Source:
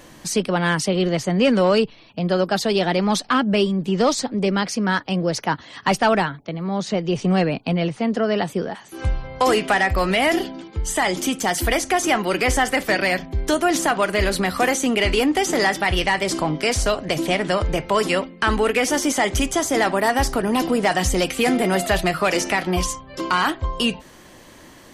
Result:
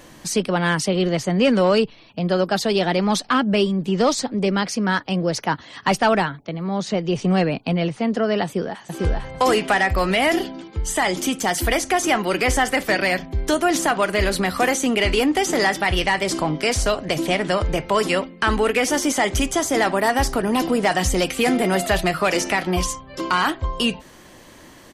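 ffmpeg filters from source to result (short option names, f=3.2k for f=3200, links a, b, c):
-filter_complex "[0:a]asplit=2[a][b];[b]afade=t=in:st=8.44:d=0.01,afade=t=out:st=8.85:d=0.01,aecho=0:1:450|900|1350:0.841395|0.168279|0.0336558[c];[a][c]amix=inputs=2:normalize=0"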